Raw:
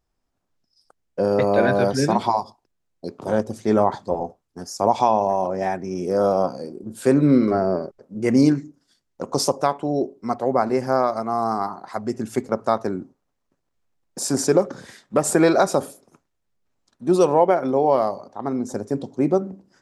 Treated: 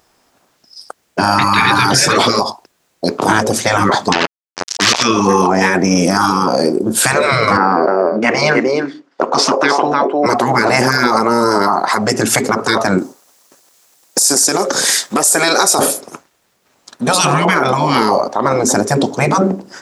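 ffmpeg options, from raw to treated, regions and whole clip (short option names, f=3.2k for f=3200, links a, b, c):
-filter_complex "[0:a]asettb=1/sr,asplit=3[a][b][c];[a]atrim=end=4.124[d];[b]atrim=start=4.12:end=5.03,asetpts=PTS-STARTPTS,afade=t=in:d=0.004:c=qsin,afade=t=out:st=0.906:d=0.004:c=qsin,acrusher=bits=3:mix=0:aa=0.5,lowpass=f=5.7k:t=q:w=2[e];[c]atrim=start=5.026[f];[d][e]acrossfade=d=0.004:c1=hsin:c2=qsin[g];[g][f]acrossfade=d=0.004:c1=qsin:c2=hsin,asettb=1/sr,asplit=3[h][i][j];[h]atrim=end=7.574[k];[i]atrim=start=7.57:end=10.26,asetpts=PTS-STARTPTS,afade=t=in:d=0.004:c=qsin,afade=t=out:st=2.686:d=0.004:c=qsin,highpass=330,lowpass=2.7k,aecho=1:1:303:0.282,atrim=end_sample=118629[l];[j]atrim=start=10.256[m];[k][l]acrossfade=d=0.004:c1=hsin:c2=qsin[n];[n][m]acrossfade=d=0.004:c1=qsin:c2=hsin,asettb=1/sr,asplit=3[o][p][q];[o]atrim=end=12.984[r];[p]atrim=start=12.98:end=15.79,asetpts=PTS-STARTPTS,afade=t=in:d=0.004:c=qsin,afade=t=out:st=2.806:d=0.004:c=qsin,bass=f=250:g=-7,treble=f=4k:g=13,acompressor=threshold=-36dB:ratio=2:attack=3.2:release=140:knee=1:detection=peak[s];[q]atrim=start=15.786[t];[r][s]acrossfade=d=0.004:c1=hsin:c2=qsin[u];[u][t]acrossfade=d=0.004:c1=qsin:c2=hsin,highpass=f=500:p=1,afftfilt=real='re*lt(hypot(re,im),0.141)':imag='im*lt(hypot(re,im),0.141)':win_size=1024:overlap=0.75,alimiter=level_in=27.5dB:limit=-1dB:release=50:level=0:latency=1,volume=-1dB"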